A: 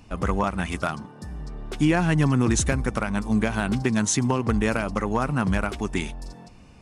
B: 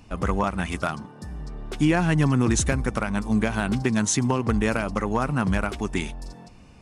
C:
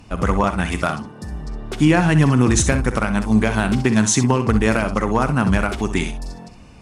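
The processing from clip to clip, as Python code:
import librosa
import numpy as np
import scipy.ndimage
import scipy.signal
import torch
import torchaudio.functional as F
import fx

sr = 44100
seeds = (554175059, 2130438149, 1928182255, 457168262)

y1 = x
y2 = fx.cheby_harmonics(y1, sr, harmonics=(6,), levels_db=(-43,), full_scale_db=-11.0)
y2 = fx.room_early_taps(y2, sr, ms=(46, 64), db=(-16.0, -11.0))
y2 = y2 * librosa.db_to_amplitude(5.5)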